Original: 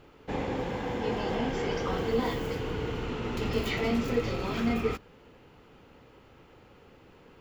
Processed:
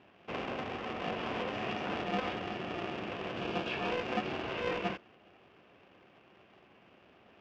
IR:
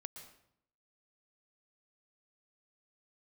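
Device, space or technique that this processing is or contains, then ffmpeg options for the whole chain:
ring modulator pedal into a guitar cabinet: -filter_complex "[0:a]aeval=exprs='val(0)*sgn(sin(2*PI*260*n/s))':c=same,highpass=100,equalizer=f=150:t=q:w=4:g=-5,equalizer=f=380:t=q:w=4:g=4,equalizer=f=2.7k:t=q:w=4:g=7,equalizer=f=4.1k:t=q:w=4:g=-7,lowpass=f=4.5k:w=0.5412,lowpass=f=4.5k:w=1.3066,asettb=1/sr,asplit=3[a][b][c];[a]atrim=end=3.404[d];[b]atrim=start=3.4:end=3.9,asetpts=PTS-STARTPTS,afade=t=in:d=0.004:c=qsin,afade=t=out:st=0.496:d=0.004:c=qsin,bandreject=f=2k:w=6[e];[c]atrim=start=3.896[f];[d][e]acrossfade=d=0.004:c1=hsin:c2=qsin[g];[g][f]acrossfade=d=0.004:c1=qsin:c2=hsin,volume=-6dB"

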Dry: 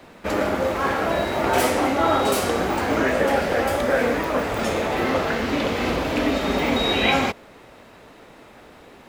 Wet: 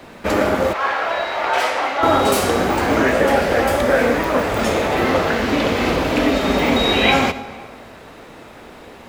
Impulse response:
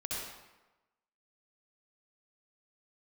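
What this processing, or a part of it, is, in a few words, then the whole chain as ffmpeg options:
compressed reverb return: -filter_complex "[0:a]asplit=2[a][b];[1:a]atrim=start_sample=2205[c];[b][c]afir=irnorm=-1:irlink=0,acompressor=threshold=-24dB:ratio=5,volume=-6dB[d];[a][d]amix=inputs=2:normalize=0,asettb=1/sr,asplit=3[e][f][g];[e]atrim=end=0.734[h];[f]atrim=start=0.73:end=2.03,asetpts=PTS-STARTPTS,afade=t=in:d=0.004:c=qsin,afade=t=out:st=1.296:d=0.004:c=qsin,acrossover=split=570 5400:gain=0.0891 1 0.158[i][j][k];[i][j][k]amix=inputs=3:normalize=0[l];[g]atrim=start=2.026[m];[h][l]acrossfade=d=0.004:c1=hsin:c2=qsin[n];[n][m]acrossfade=d=0.004:c1=qsin:c2=hsin,volume=3.5dB"

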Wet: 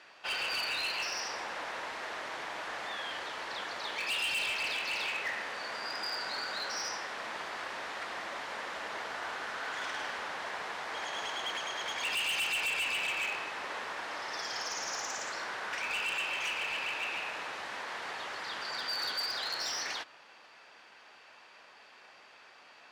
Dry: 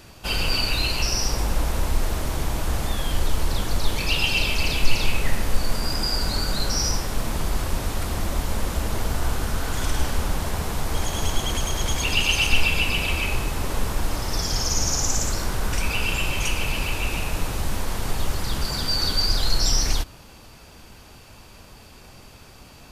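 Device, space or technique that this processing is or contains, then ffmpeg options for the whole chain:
megaphone: -af "highpass=660,lowpass=3.7k,equalizer=f=1.8k:t=o:w=0.53:g=6,asoftclip=type=hard:threshold=-24.5dB,volume=-5dB"

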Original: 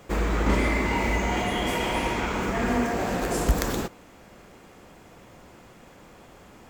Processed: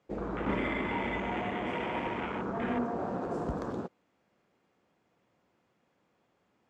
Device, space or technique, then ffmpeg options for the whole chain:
over-cleaned archive recording: -af "highpass=110,lowpass=5.6k,afwtdn=0.0355,volume=-6.5dB"

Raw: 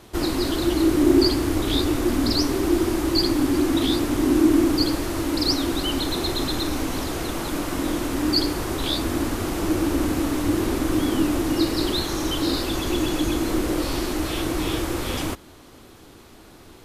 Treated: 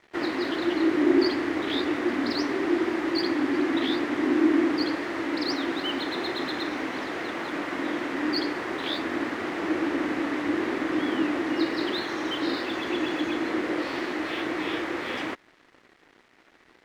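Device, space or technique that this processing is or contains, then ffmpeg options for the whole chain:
pocket radio on a weak battery: -af "highpass=270,lowpass=3.2k,aeval=exprs='sgn(val(0))*max(abs(val(0))-0.00316,0)':c=same,equalizer=f=1.9k:t=o:w=0.58:g=9,volume=-2dB"

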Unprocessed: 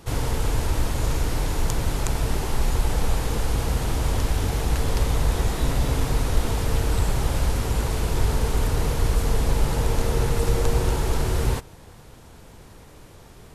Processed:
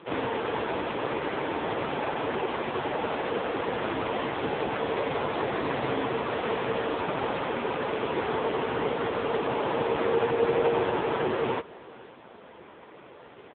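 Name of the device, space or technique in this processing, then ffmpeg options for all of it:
satellite phone: -af "highpass=310,lowpass=3.3k,aecho=1:1:506:0.0841,volume=7dB" -ar 8000 -c:a libopencore_amrnb -b:a 5900

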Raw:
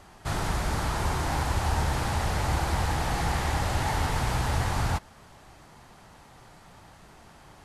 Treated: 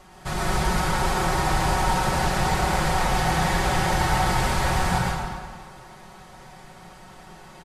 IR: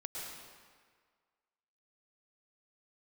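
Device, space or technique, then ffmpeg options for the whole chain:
stairwell: -filter_complex "[1:a]atrim=start_sample=2205[a];[0:a][a]afir=irnorm=-1:irlink=0,aecho=1:1:5.4:0.71,volume=5dB"

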